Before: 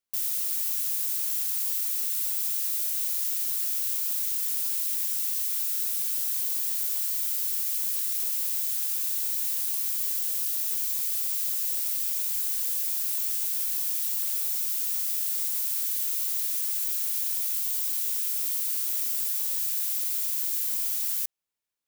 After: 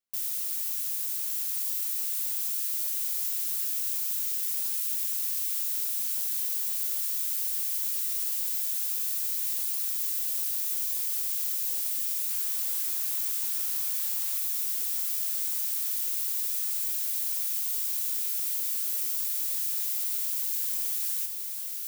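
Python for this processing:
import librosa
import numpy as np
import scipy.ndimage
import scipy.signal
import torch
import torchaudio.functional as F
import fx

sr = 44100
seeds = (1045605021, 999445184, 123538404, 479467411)

y = fx.dmg_noise_band(x, sr, seeds[0], low_hz=710.0, high_hz=6900.0, level_db=-50.0, at=(12.29, 14.37), fade=0.02)
y = fx.echo_diffused(y, sr, ms=1387, feedback_pct=62, wet_db=-6.0)
y = y * librosa.db_to_amplitude(-3.0)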